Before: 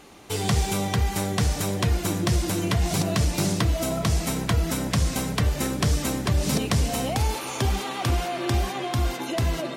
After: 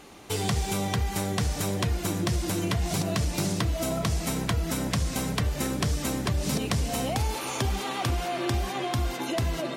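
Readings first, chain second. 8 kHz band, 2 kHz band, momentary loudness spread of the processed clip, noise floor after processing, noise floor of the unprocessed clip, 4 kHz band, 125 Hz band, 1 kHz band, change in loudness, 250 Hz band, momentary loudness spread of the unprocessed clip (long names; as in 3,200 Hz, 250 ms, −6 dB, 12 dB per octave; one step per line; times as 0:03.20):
−3.0 dB, −2.5 dB, 2 LU, −34 dBFS, −33 dBFS, −2.5 dB, −4.0 dB, −2.5 dB, −3.5 dB, −3.0 dB, 3 LU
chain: downward compressor 2.5 to 1, threshold −25 dBFS, peak gain reduction 5.5 dB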